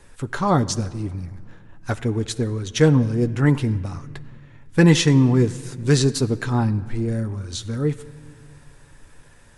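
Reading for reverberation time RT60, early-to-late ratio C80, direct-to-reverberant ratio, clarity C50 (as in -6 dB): not exponential, 18.0 dB, 8.0 dB, 17.0 dB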